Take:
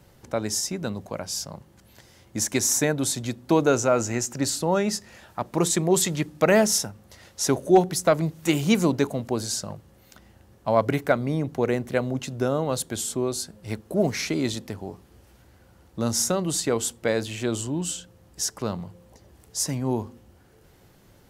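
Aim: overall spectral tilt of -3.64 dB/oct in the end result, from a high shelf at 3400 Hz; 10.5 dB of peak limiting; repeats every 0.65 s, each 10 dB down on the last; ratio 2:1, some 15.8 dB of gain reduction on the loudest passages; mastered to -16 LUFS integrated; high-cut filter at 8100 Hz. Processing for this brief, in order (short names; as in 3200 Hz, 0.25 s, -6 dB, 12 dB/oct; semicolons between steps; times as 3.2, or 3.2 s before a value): LPF 8100 Hz; high shelf 3400 Hz +5 dB; compressor 2:1, threshold -42 dBFS; limiter -28.5 dBFS; feedback echo 0.65 s, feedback 32%, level -10 dB; gain +23.5 dB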